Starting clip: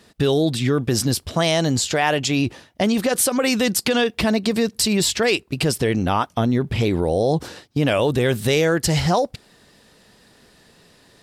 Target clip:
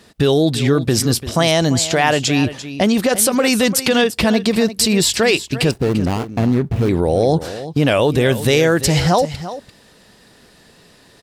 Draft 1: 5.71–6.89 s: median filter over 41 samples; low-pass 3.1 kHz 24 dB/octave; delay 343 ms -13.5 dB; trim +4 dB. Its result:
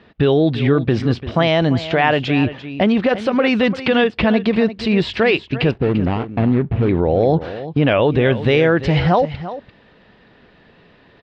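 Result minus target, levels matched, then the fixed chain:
4 kHz band -5.0 dB
5.71–6.89 s: median filter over 41 samples; delay 343 ms -13.5 dB; trim +4 dB

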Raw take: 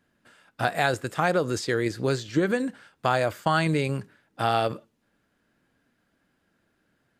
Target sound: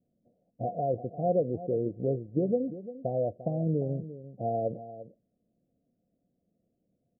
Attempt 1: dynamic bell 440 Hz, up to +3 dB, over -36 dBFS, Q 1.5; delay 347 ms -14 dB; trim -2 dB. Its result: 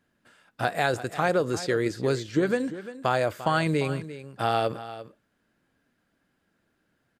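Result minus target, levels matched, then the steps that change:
1 kHz band +4.5 dB
add after dynamic bell: rippled Chebyshev low-pass 730 Hz, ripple 6 dB

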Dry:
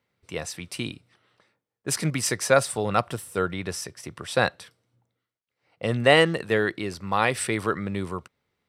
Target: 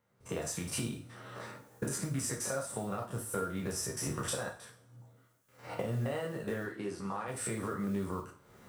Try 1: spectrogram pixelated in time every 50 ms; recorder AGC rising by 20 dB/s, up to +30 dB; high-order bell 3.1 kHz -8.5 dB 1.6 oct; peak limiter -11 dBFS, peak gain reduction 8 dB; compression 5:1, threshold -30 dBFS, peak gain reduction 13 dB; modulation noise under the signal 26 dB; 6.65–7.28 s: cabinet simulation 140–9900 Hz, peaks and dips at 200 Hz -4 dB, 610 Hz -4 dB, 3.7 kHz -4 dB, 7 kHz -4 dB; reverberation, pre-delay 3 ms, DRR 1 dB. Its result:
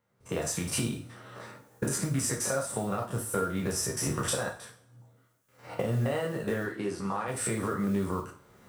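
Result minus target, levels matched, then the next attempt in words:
compression: peak gain reduction -5.5 dB
spectrogram pixelated in time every 50 ms; recorder AGC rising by 20 dB/s, up to +30 dB; high-order bell 3.1 kHz -8.5 dB 1.6 oct; peak limiter -11 dBFS, peak gain reduction 8 dB; compression 5:1, threshold -37 dBFS, peak gain reduction 18.5 dB; modulation noise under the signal 26 dB; 6.65–7.28 s: cabinet simulation 140–9900 Hz, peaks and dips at 200 Hz -4 dB, 610 Hz -4 dB, 3.7 kHz -4 dB, 7 kHz -4 dB; reverberation, pre-delay 3 ms, DRR 1 dB

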